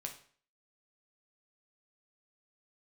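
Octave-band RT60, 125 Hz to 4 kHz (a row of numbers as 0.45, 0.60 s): 0.45, 0.50, 0.50, 0.45, 0.45, 0.45 s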